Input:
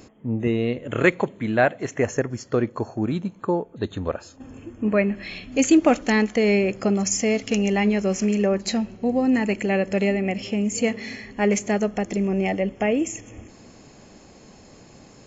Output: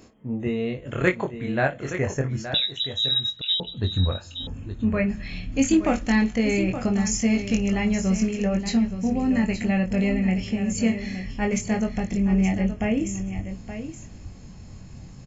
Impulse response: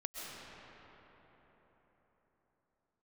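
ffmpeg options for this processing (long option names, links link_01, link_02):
-filter_complex "[0:a]asplit=2[link_01][link_02];[link_02]aecho=0:1:22|55:0.596|0.126[link_03];[link_01][link_03]amix=inputs=2:normalize=0,asubboost=boost=8.5:cutoff=140,asettb=1/sr,asplit=3[link_04][link_05][link_06];[link_04]atrim=end=2.544[link_07];[link_05]atrim=start=2.54:end=3.6,asetpts=PTS-STARTPTS,afade=type=in:duration=0.004:curve=qsin,afade=type=out:start_time=1.056:duration=0.004:curve=qsin,lowpass=frequency=3400:width_type=q:width=0.5098,lowpass=frequency=3400:width_type=q:width=0.6013,lowpass=frequency=3400:width_type=q:width=0.9,lowpass=frequency=3400:width_type=q:width=2.563,afreqshift=-4000[link_08];[link_06]atrim=start=3.596[link_09];[link_07][link_08]acrossfade=duration=0.004:curve1=hsin:curve2=qsin[link_10];[link_10][link_09]acrossfade=duration=0.004:curve1=qsin:curve2=hsin,asplit=2[link_11][link_12];[link_12]aecho=0:1:871:0.299[link_13];[link_11][link_13]amix=inputs=2:normalize=0,volume=-4.5dB"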